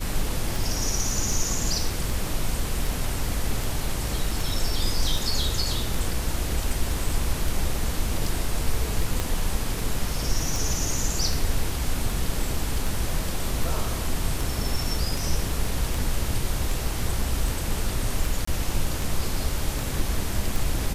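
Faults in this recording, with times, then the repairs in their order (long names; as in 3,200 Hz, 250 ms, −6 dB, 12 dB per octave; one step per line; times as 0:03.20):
scratch tick 78 rpm
0:09.20: click −11 dBFS
0:18.45–0:18.47: drop-out 24 ms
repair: click removal
repair the gap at 0:18.45, 24 ms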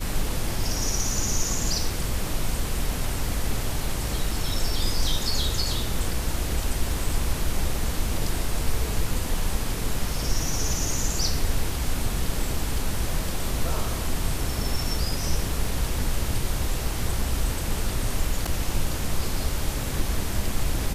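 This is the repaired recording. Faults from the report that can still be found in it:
0:09.20: click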